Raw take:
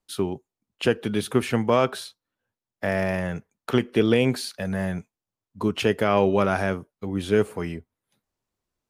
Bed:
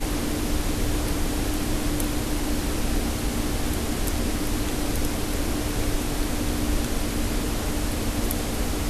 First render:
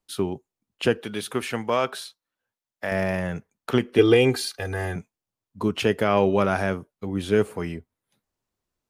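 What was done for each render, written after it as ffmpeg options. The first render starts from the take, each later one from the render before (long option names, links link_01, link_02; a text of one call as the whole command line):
ffmpeg -i in.wav -filter_complex "[0:a]asettb=1/sr,asplit=3[link_01][link_02][link_03];[link_01]atrim=end=1.014[link_04];[link_02]atrim=start=1.01:end=2.92,asetpts=PTS-STARTPTS,afade=type=in:duration=0.004:curve=qsin,afade=type=out:start_time=1.906:duration=0.004:curve=qsin,lowshelf=frequency=400:gain=-10[link_05];[link_03]atrim=start=2.916[link_06];[link_04][link_05]acrossfade=duration=0.004:curve1=hsin:curve2=qsin[link_07];[link_07][link_06]acrossfade=duration=0.004:curve1=qsin:curve2=hsin,asettb=1/sr,asplit=3[link_08][link_09][link_10];[link_08]atrim=end=3.984[link_11];[link_09]atrim=start=3.98:end=4.96,asetpts=PTS-STARTPTS,afade=type=in:duration=0.004:curve=qsin,afade=type=out:start_time=0.976:duration=0.004:curve=qsin,aecho=1:1:2.5:0.98,atrim=end_sample=43218[link_12];[link_10]atrim=start=4.956[link_13];[link_11][link_12]acrossfade=duration=0.004:curve1=hsin:curve2=qsin[link_14];[link_14][link_13]acrossfade=duration=0.004:curve1=qsin:curve2=hsin" out.wav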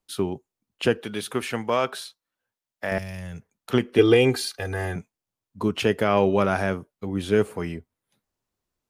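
ffmpeg -i in.wav -filter_complex "[0:a]asettb=1/sr,asplit=3[link_01][link_02][link_03];[link_01]atrim=end=2.984[link_04];[link_02]atrim=start=2.98:end=3.71,asetpts=PTS-STARTPTS,afade=type=in:duration=0.004:curve=qsin,afade=type=out:start_time=0.726:duration=0.004:curve=qsin,acrossover=split=130|3000[link_05][link_06][link_07];[link_06]acompressor=threshold=-43dB:ratio=4:attack=3.2:release=140:knee=2.83:detection=peak[link_08];[link_05][link_08][link_07]amix=inputs=3:normalize=0[link_09];[link_03]atrim=start=3.706[link_10];[link_04][link_09]acrossfade=duration=0.004:curve1=hsin:curve2=qsin[link_11];[link_11][link_10]acrossfade=duration=0.004:curve1=qsin:curve2=hsin" out.wav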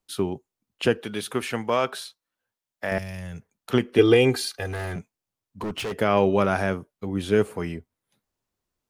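ffmpeg -i in.wav -filter_complex "[0:a]asettb=1/sr,asplit=3[link_01][link_02][link_03];[link_01]atrim=end=4.664[link_04];[link_02]atrim=start=4.66:end=5.98,asetpts=PTS-STARTPTS,afade=type=in:duration=0.004:curve=qsin,afade=type=out:start_time=1.316:duration=0.004:curve=qsin,volume=27dB,asoftclip=hard,volume=-27dB[link_05];[link_03]atrim=start=5.976[link_06];[link_04][link_05]acrossfade=duration=0.004:curve1=hsin:curve2=qsin[link_07];[link_07][link_06]acrossfade=duration=0.004:curve1=qsin:curve2=hsin" out.wav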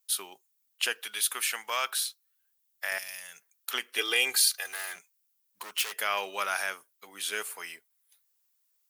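ffmpeg -i in.wav -af "highpass=1400,aemphasis=mode=production:type=50fm" out.wav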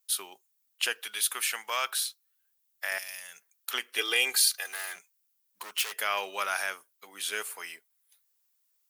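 ffmpeg -i in.wav -af "highpass=frequency=200:poles=1" out.wav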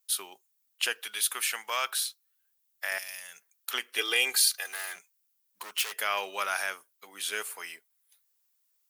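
ffmpeg -i in.wav -af anull out.wav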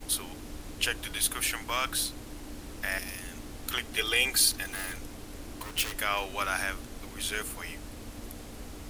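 ffmpeg -i in.wav -i bed.wav -filter_complex "[1:a]volume=-17dB[link_01];[0:a][link_01]amix=inputs=2:normalize=0" out.wav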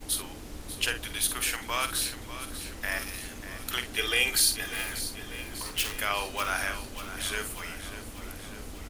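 ffmpeg -i in.wav -filter_complex "[0:a]asplit=2[link_01][link_02];[link_02]adelay=49,volume=-9.5dB[link_03];[link_01][link_03]amix=inputs=2:normalize=0,asplit=2[link_04][link_05];[link_05]aecho=0:1:593|1186|1779|2372|2965|3558|4151:0.251|0.148|0.0874|0.0516|0.0304|0.018|0.0106[link_06];[link_04][link_06]amix=inputs=2:normalize=0" out.wav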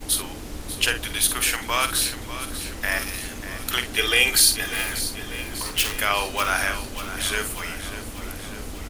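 ffmpeg -i in.wav -af "volume=7dB" out.wav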